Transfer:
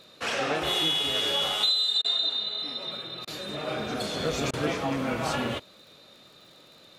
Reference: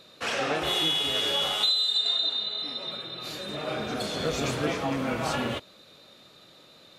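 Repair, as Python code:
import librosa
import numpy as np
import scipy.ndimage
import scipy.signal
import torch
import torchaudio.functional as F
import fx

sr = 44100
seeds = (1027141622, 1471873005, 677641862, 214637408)

y = fx.fix_declick_ar(x, sr, threshold=6.5)
y = fx.fix_interpolate(y, sr, at_s=(2.02, 3.25, 4.51), length_ms=23.0)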